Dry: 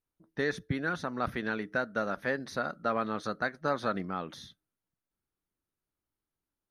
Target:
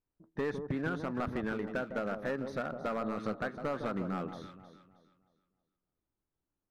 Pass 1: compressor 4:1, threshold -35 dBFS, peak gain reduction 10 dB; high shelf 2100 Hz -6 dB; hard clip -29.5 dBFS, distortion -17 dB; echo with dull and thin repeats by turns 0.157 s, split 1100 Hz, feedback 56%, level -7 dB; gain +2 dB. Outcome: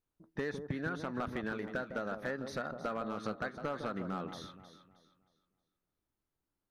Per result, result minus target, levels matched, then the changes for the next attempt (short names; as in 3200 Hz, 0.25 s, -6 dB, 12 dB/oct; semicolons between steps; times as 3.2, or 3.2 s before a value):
compressor: peak gain reduction +5 dB; 4000 Hz band +4.5 dB
change: compressor 4:1, threshold -28 dBFS, peak gain reduction 4.5 dB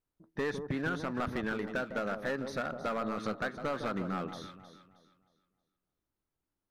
4000 Hz band +5.0 dB
change: high shelf 2100 Hz -16 dB